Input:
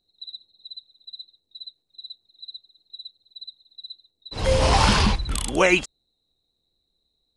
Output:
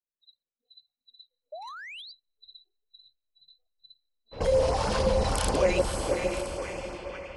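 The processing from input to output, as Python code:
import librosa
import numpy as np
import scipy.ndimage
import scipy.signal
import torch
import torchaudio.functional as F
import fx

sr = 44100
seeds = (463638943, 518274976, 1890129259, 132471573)

p1 = fx.hum_notches(x, sr, base_hz=50, count=8)
p2 = fx.echo_split(p1, sr, split_hz=880.0, low_ms=142, high_ms=507, feedback_pct=52, wet_db=-10.5)
p3 = fx.level_steps(p2, sr, step_db=14)
p4 = p3 + fx.echo_diffused(p3, sr, ms=552, feedback_pct=48, wet_db=-4.0, dry=0)
p5 = fx.env_lowpass(p4, sr, base_hz=960.0, full_db=-30.5)
p6 = fx.dynamic_eq(p5, sr, hz=3000.0, q=1.0, threshold_db=-45.0, ratio=4.0, max_db=-4)
p7 = fx.filter_lfo_notch(p6, sr, shape='sine', hz=6.4, low_hz=330.0, high_hz=3800.0, q=1.8)
p8 = fx.spec_paint(p7, sr, seeds[0], shape='rise', start_s=1.52, length_s=0.6, low_hz=580.0, high_hz=4900.0, level_db=-45.0)
p9 = fx.peak_eq(p8, sr, hz=520.0, db=11.0, octaves=0.76)
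p10 = fx.leveller(p9, sr, passes=1, at=(1.62, 2.02))
y = fx.noise_reduce_blind(p10, sr, reduce_db=23)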